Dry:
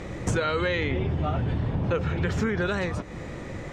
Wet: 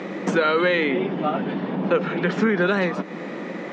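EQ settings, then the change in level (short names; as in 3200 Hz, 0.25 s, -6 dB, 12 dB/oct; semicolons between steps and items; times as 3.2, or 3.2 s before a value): Chebyshev high-pass 180 Hz, order 5; Bessel low-pass 4900 Hz, order 2; air absorption 88 m; +8.0 dB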